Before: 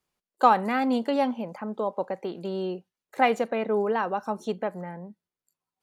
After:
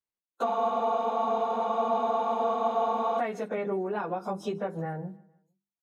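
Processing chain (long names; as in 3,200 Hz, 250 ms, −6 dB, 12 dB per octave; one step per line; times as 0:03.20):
phase-vocoder pitch shift without resampling −1.5 semitones
noise gate −49 dBFS, range −20 dB
mains-hum notches 50/100/150/200/250/300/350/400 Hz
downward compressor 8 to 1, threshold −33 dBFS, peak gain reduction 16.5 dB
repeating echo 152 ms, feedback 43%, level −23 dB
frozen spectrum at 0:00.47, 2.72 s
level +5.5 dB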